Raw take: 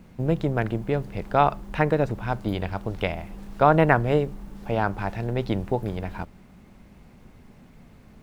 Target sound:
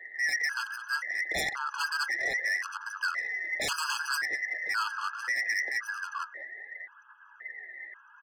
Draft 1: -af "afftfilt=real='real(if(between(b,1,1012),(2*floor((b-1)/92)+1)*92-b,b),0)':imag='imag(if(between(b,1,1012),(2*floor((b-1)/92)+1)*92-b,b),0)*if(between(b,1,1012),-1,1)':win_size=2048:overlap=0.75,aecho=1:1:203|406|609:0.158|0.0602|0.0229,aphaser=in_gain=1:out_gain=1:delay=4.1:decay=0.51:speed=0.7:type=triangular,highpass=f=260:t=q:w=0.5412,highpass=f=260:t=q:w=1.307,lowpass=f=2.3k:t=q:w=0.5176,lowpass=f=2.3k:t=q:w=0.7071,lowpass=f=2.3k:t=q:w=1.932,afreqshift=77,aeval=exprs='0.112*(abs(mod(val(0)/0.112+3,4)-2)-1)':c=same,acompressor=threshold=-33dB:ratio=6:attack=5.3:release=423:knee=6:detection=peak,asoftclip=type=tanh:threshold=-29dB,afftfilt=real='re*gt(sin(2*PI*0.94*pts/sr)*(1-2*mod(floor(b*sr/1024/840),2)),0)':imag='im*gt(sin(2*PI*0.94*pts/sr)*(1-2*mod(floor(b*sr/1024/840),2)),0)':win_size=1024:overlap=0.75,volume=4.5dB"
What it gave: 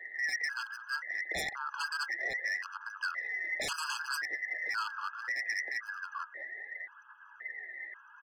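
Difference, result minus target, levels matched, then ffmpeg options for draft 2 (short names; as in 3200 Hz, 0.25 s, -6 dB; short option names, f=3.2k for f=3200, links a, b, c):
compressor: peak gain reduction +8.5 dB
-af "afftfilt=real='real(if(between(b,1,1012),(2*floor((b-1)/92)+1)*92-b,b),0)':imag='imag(if(between(b,1,1012),(2*floor((b-1)/92)+1)*92-b,b),0)*if(between(b,1,1012),-1,1)':win_size=2048:overlap=0.75,aecho=1:1:203|406|609:0.158|0.0602|0.0229,aphaser=in_gain=1:out_gain=1:delay=4.1:decay=0.51:speed=0.7:type=triangular,highpass=f=260:t=q:w=0.5412,highpass=f=260:t=q:w=1.307,lowpass=f=2.3k:t=q:w=0.5176,lowpass=f=2.3k:t=q:w=0.7071,lowpass=f=2.3k:t=q:w=1.932,afreqshift=77,aeval=exprs='0.112*(abs(mod(val(0)/0.112+3,4)-2)-1)':c=same,acompressor=threshold=-21.5dB:ratio=6:attack=5.3:release=423:knee=6:detection=peak,asoftclip=type=tanh:threshold=-29dB,afftfilt=real='re*gt(sin(2*PI*0.94*pts/sr)*(1-2*mod(floor(b*sr/1024/840),2)),0)':imag='im*gt(sin(2*PI*0.94*pts/sr)*(1-2*mod(floor(b*sr/1024/840),2)),0)':win_size=1024:overlap=0.75,volume=4.5dB"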